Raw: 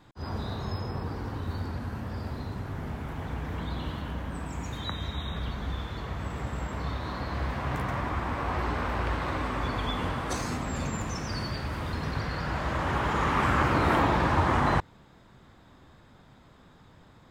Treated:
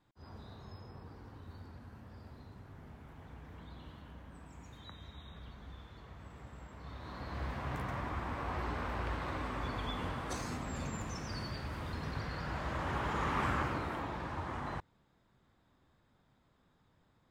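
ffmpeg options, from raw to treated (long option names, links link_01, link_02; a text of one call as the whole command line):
ffmpeg -i in.wav -af "volume=-8dB,afade=type=in:start_time=6.8:duration=0.65:silence=0.354813,afade=type=out:start_time=13.46:duration=0.45:silence=0.398107" out.wav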